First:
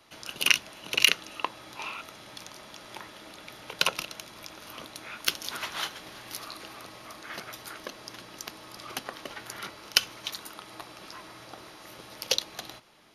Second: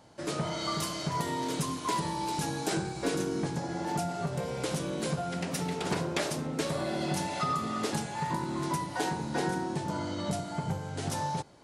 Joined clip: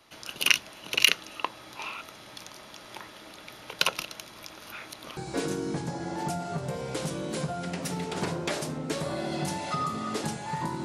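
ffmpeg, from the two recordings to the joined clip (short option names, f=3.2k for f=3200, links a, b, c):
-filter_complex "[0:a]apad=whole_dur=10.84,atrim=end=10.84,asplit=2[a][b];[a]atrim=end=4.722[c];[b]atrim=start=4.718:end=5.172,asetpts=PTS-STARTPTS,areverse[d];[1:a]atrim=start=2.858:end=8.53[e];[c][d]acrossfade=d=0.004:c1=hsin:c2=hsin[f];[f][e]acrossfade=d=0.004:c1=hsin:c2=hsin"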